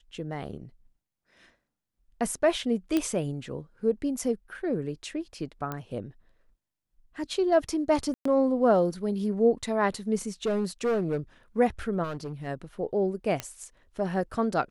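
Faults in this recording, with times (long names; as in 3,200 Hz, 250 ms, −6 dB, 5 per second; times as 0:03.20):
0:02.97: click −13 dBFS
0:05.72: click −19 dBFS
0:08.14–0:08.25: drop-out 114 ms
0:10.46–0:11.18: clipping −22.5 dBFS
0:12.03–0:12.48: clipping −30 dBFS
0:13.40: click −15 dBFS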